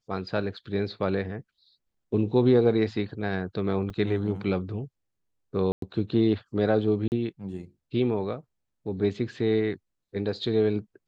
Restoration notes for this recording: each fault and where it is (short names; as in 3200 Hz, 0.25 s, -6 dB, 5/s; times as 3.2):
0.57 gap 3.7 ms
3.9 gap 2.2 ms
5.72–5.82 gap 0.103 s
7.08–7.12 gap 39 ms